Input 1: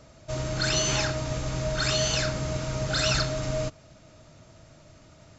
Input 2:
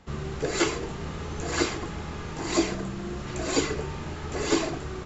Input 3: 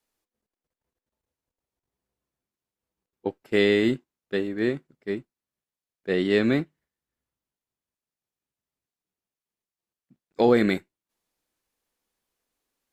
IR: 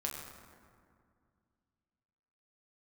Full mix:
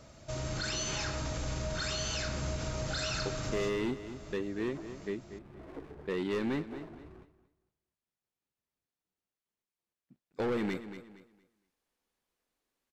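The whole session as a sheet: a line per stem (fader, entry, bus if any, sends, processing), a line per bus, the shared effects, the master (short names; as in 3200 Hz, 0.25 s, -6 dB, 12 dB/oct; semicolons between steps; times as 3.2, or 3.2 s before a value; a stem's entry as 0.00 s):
-5.0 dB, 0.00 s, bus A, send -7.5 dB, no echo send, AGC gain up to 4 dB
-17.5 dB, 2.20 s, bus A, no send, echo send -15.5 dB, steep low-pass 1600 Hz 96 dB/oct; running maximum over 17 samples
-2.0 dB, 0.00 s, no bus, no send, echo send -15 dB, hard clip -20 dBFS, distortion -9 dB
bus A: 0.0 dB, high shelf 5200 Hz +9 dB; limiter -23.5 dBFS, peak gain reduction 11.5 dB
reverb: on, RT60 2.2 s, pre-delay 6 ms
echo: feedback echo 0.232 s, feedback 23%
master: high shelf 6800 Hz -6 dB; compressor 1.5:1, threshold -42 dBFS, peak gain reduction 7.5 dB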